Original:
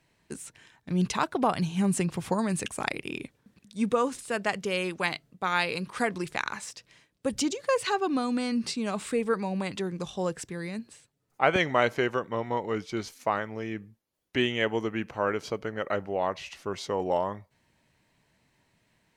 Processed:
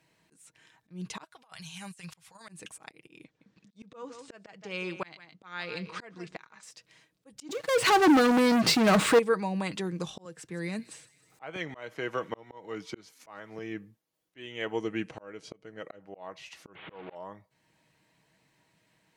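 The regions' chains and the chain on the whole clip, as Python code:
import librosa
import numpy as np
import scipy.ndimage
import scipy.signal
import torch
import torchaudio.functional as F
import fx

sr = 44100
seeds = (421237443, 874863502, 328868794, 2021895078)

y = fx.chain(x, sr, fx.tone_stack(knobs='10-0-10'),
    fx.over_compress(threshold_db=-43.0, ratio=-0.5), at=(1.24, 2.49))
y = fx.chain(y, sr, fx.lowpass(hz=6600.0, slope=24),
    fx.echo_single(ms=166, db=-15.5), at=(3.24, 6.63))
y = fx.chain(y, sr, fx.lowpass(hz=2300.0, slope=6),
    fx.leveller(passes=5), at=(7.49, 9.19))
y = fx.chain(y, sr, fx.echo_wet_highpass(ms=156, feedback_pct=56, hz=2500.0, wet_db=-20),
    fx.band_squash(depth_pct=40), at=(10.25, 13.59))
y = fx.chain(y, sr, fx.resample_bad(factor=2, down='none', up='filtered'),
    fx.peak_eq(hz=1100.0, db=-6.0, octaves=1.3), at=(14.8, 16.0))
y = fx.chain(y, sr, fx.delta_mod(bps=16000, step_db=-27.0),
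    fx.doppler_dist(depth_ms=0.19), at=(16.75, 17.15))
y = fx.highpass(y, sr, hz=130.0, slope=6)
y = y + 0.36 * np.pad(y, (int(6.3 * sr / 1000.0), 0))[:len(y)]
y = fx.auto_swell(y, sr, attack_ms=640.0)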